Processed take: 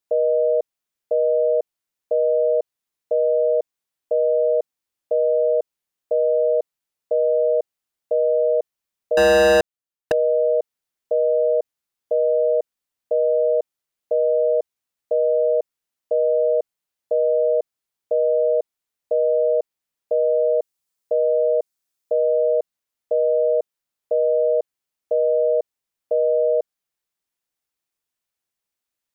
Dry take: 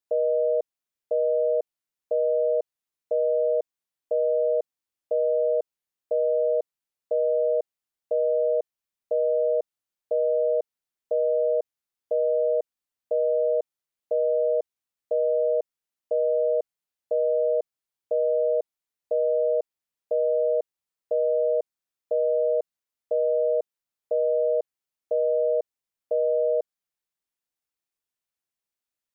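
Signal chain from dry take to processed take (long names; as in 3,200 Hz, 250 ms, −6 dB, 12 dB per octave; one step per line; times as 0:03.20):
0:09.17–0:10.12: leveller curve on the samples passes 5
0:20.24–0:22.18: bass and treble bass 0 dB, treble +6 dB
level +4.5 dB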